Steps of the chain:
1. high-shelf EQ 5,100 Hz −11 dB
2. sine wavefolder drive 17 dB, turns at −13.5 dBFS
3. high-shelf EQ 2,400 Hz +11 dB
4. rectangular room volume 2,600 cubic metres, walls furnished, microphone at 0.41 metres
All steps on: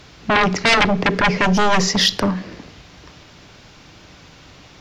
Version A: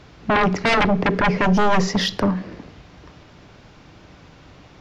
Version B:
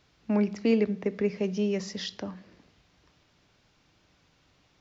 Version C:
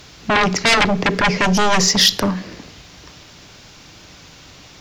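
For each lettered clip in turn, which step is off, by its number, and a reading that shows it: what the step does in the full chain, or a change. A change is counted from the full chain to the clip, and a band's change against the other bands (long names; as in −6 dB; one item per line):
3, 8 kHz band −8.5 dB
2, change in crest factor +2.5 dB
1, 8 kHz band +6.0 dB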